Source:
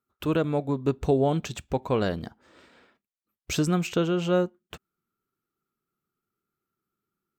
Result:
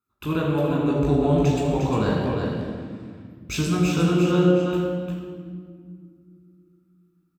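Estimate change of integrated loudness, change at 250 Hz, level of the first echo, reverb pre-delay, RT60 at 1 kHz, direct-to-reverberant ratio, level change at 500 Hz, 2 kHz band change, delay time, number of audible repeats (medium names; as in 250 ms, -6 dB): +4.0 dB, +6.5 dB, -5.0 dB, 18 ms, 1.8 s, -5.5 dB, +3.5 dB, +4.0 dB, 353 ms, 1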